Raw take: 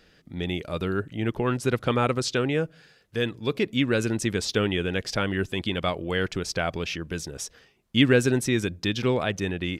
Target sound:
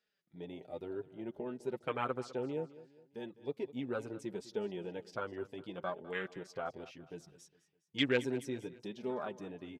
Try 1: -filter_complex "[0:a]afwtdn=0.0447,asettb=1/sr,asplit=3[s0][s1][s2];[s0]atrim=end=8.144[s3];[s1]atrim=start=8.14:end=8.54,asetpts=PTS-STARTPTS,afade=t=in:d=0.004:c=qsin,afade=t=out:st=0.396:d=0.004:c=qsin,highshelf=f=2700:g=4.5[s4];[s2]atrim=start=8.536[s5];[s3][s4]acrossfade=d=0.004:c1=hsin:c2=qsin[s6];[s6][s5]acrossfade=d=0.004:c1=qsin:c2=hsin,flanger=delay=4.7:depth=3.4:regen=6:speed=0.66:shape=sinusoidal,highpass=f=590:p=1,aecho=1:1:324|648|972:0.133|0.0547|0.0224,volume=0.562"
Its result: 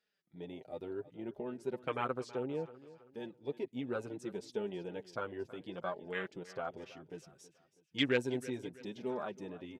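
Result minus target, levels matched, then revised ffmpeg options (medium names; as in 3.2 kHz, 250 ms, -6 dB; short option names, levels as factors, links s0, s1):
echo 119 ms late
-filter_complex "[0:a]afwtdn=0.0447,asettb=1/sr,asplit=3[s0][s1][s2];[s0]atrim=end=8.144[s3];[s1]atrim=start=8.14:end=8.54,asetpts=PTS-STARTPTS,afade=t=in:d=0.004:c=qsin,afade=t=out:st=0.396:d=0.004:c=qsin,highshelf=f=2700:g=4.5[s4];[s2]atrim=start=8.536[s5];[s3][s4]acrossfade=d=0.004:c1=hsin:c2=qsin[s6];[s6][s5]acrossfade=d=0.004:c1=qsin:c2=hsin,flanger=delay=4.7:depth=3.4:regen=6:speed=0.66:shape=sinusoidal,highpass=f=590:p=1,aecho=1:1:205|410|615:0.133|0.0547|0.0224,volume=0.562"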